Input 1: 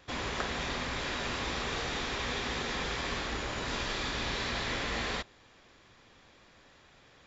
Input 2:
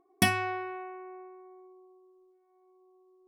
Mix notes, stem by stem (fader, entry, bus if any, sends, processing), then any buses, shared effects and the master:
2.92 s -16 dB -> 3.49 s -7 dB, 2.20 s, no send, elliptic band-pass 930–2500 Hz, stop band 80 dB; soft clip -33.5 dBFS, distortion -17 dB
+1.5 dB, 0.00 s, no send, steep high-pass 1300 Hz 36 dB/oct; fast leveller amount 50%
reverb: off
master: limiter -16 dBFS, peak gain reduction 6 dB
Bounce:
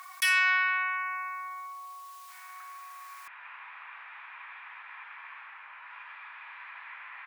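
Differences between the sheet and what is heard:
stem 1: missing soft clip -33.5 dBFS, distortion -17 dB; stem 2 +1.5 dB -> +8.0 dB

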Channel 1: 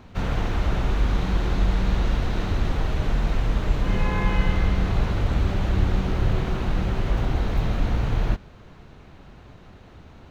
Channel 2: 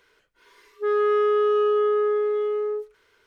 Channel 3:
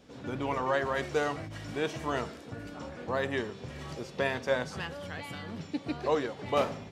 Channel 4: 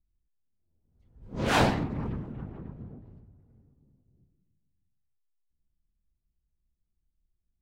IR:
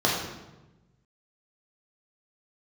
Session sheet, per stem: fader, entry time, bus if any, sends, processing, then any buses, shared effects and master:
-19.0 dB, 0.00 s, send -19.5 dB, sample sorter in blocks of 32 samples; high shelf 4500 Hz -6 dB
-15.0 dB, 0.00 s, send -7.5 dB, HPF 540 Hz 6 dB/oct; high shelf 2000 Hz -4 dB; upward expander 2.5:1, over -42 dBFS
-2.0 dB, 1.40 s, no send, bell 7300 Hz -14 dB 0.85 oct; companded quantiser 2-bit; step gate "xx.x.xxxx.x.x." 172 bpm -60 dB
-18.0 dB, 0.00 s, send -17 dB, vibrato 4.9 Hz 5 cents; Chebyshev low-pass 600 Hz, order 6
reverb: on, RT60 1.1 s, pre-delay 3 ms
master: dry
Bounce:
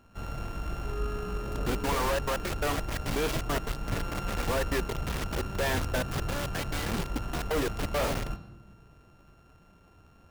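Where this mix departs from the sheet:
stem 1 -19.0 dB -> -13.0 dB; stem 2 -15.0 dB -> -27.0 dB

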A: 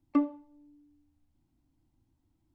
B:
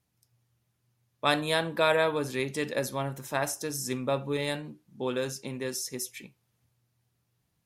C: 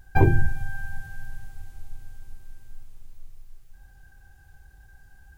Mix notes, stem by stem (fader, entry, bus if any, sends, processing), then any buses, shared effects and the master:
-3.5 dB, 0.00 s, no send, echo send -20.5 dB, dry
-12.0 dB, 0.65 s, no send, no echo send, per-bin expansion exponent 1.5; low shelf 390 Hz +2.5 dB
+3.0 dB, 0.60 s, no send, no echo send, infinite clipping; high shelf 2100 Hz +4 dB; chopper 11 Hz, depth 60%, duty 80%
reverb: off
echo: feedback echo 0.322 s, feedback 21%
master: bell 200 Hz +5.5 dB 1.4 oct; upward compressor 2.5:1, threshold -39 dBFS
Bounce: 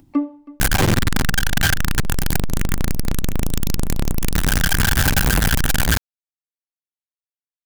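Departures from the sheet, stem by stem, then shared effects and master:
stem A -3.5 dB -> +2.5 dB; stem B: muted; stem C +3.0 dB -> +9.5 dB

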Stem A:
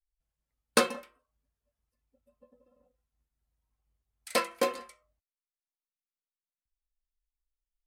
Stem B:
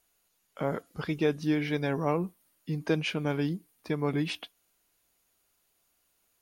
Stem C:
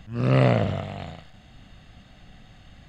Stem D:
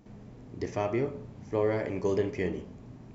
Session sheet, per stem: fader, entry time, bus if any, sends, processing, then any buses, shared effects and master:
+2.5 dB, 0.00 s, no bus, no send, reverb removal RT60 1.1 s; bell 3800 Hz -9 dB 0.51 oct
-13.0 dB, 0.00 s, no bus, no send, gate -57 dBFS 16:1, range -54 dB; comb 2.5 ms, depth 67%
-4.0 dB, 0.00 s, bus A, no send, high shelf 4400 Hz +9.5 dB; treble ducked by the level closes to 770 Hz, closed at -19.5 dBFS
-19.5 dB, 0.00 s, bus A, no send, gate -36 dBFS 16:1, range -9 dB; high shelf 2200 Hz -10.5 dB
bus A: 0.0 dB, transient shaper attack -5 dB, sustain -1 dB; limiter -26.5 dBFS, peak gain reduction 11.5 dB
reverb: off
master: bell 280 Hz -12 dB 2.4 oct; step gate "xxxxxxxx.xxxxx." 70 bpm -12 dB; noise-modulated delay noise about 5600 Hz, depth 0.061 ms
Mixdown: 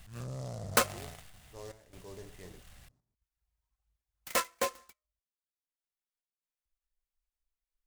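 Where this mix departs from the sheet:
stem B: muted; stem D -19.5 dB -> -9.5 dB

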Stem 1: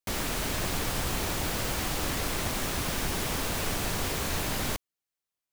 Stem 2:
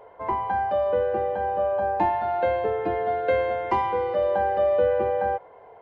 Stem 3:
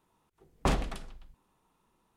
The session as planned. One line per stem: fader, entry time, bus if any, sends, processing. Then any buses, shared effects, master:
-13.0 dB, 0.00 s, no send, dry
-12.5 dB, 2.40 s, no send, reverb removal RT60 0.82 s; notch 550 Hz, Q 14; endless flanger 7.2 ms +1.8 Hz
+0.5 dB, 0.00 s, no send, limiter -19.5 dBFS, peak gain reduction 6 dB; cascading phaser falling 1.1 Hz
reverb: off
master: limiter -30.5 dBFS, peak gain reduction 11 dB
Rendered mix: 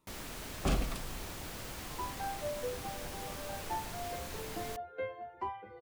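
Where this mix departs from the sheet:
stem 2: entry 2.40 s -> 1.70 s; master: missing limiter -30.5 dBFS, peak gain reduction 11 dB

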